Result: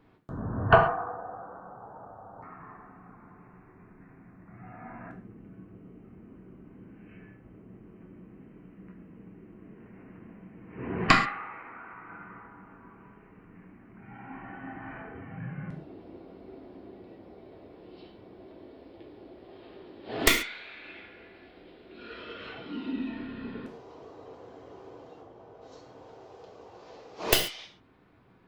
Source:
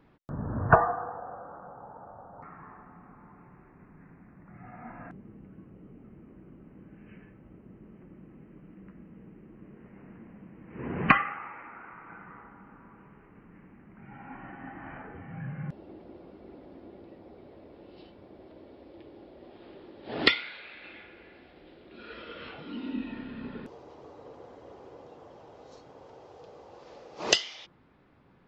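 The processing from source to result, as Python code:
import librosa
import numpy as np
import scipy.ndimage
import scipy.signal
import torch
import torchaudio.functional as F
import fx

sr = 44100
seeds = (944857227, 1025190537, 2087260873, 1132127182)

y = fx.tracing_dist(x, sr, depth_ms=0.2)
y = fx.high_shelf(y, sr, hz=2100.0, db=-11.0, at=(25.2, 25.61), fade=0.02)
y = fx.rev_gated(y, sr, seeds[0], gate_ms=160, shape='falling', drr_db=2.0)
y = y * librosa.db_to_amplitude(-1.0)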